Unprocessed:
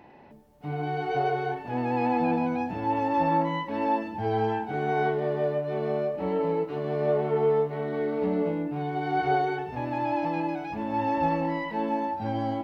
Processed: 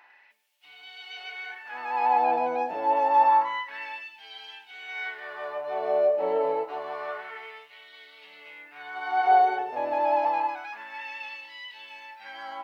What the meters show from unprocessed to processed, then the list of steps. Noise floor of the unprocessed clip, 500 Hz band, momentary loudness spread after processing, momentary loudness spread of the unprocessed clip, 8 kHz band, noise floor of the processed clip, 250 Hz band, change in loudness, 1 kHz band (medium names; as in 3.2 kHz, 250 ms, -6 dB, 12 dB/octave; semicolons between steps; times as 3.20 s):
-45 dBFS, -3.0 dB, 21 LU, 6 LU, no reading, -56 dBFS, -16.5 dB, +1.5 dB, +3.0 dB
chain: LFO high-pass sine 0.28 Hz 560–3200 Hz